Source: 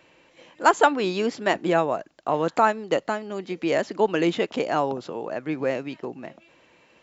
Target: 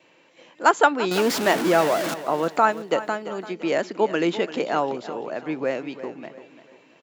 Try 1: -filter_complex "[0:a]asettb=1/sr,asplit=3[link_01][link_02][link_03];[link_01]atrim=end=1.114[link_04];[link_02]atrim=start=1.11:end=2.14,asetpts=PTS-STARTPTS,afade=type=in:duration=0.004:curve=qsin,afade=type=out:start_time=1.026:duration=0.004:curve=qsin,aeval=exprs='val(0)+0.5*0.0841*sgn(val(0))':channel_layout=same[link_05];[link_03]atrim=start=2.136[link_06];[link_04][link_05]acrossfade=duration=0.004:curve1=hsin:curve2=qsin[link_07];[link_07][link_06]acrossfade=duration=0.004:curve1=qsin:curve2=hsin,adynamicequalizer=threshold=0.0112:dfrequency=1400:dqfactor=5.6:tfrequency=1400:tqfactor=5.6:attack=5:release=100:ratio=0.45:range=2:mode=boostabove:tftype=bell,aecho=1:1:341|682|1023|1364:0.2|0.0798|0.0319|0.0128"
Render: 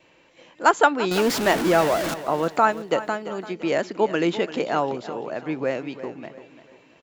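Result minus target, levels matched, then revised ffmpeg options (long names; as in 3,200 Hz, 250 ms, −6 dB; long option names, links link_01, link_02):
125 Hz band +2.5 dB
-filter_complex "[0:a]asettb=1/sr,asplit=3[link_01][link_02][link_03];[link_01]atrim=end=1.114[link_04];[link_02]atrim=start=1.11:end=2.14,asetpts=PTS-STARTPTS,afade=type=in:duration=0.004:curve=qsin,afade=type=out:start_time=1.026:duration=0.004:curve=qsin,aeval=exprs='val(0)+0.5*0.0841*sgn(val(0))':channel_layout=same[link_05];[link_03]atrim=start=2.136[link_06];[link_04][link_05]acrossfade=duration=0.004:curve1=hsin:curve2=qsin[link_07];[link_07][link_06]acrossfade=duration=0.004:curve1=qsin:curve2=hsin,adynamicequalizer=threshold=0.0112:dfrequency=1400:dqfactor=5.6:tfrequency=1400:tqfactor=5.6:attack=5:release=100:ratio=0.45:range=2:mode=boostabove:tftype=bell,highpass=160,aecho=1:1:341|682|1023|1364:0.2|0.0798|0.0319|0.0128"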